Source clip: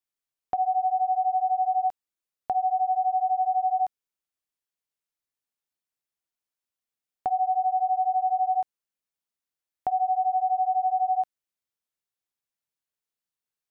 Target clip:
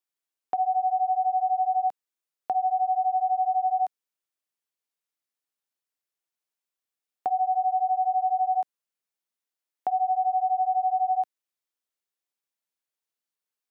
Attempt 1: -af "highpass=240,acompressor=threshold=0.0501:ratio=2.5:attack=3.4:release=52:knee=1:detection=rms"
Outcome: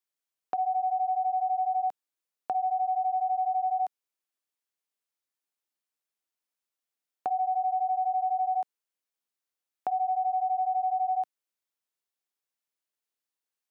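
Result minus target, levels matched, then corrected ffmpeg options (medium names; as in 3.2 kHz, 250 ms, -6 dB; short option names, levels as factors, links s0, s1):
compression: peak gain reduction +4 dB
-af "highpass=240"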